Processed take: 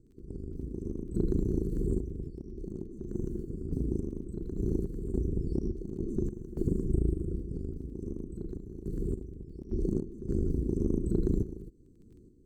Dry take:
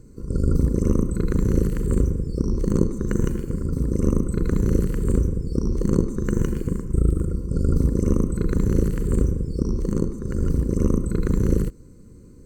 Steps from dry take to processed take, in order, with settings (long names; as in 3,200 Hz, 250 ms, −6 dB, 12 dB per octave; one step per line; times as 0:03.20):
drawn EQ curve 200 Hz 0 dB, 380 Hz +7 dB, 630 Hz −16 dB, 1,600 Hz −17 dB, 2,500 Hz −25 dB, 4,000 Hz −8 dB
downward compressor, threshold −23 dBFS, peak gain reduction 12.5 dB
sample-and-hold tremolo, depth 85%
surface crackle 17 per second −56 dBFS